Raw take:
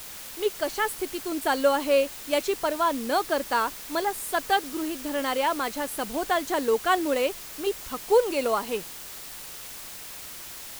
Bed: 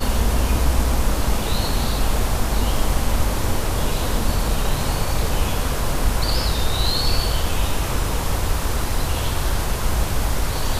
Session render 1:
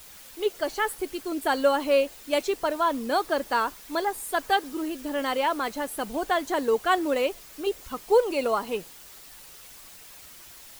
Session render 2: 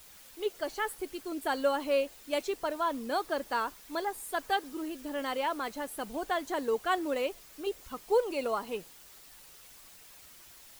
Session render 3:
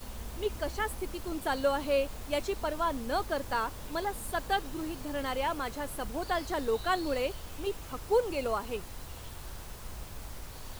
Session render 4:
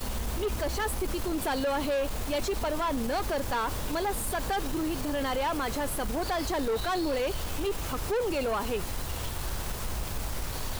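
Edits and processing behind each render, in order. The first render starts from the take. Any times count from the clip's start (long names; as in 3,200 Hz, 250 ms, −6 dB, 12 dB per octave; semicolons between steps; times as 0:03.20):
broadband denoise 8 dB, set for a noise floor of −41 dBFS
level −6.5 dB
mix in bed −22.5 dB
leveller curve on the samples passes 3; brickwall limiter −24 dBFS, peak gain reduction 8 dB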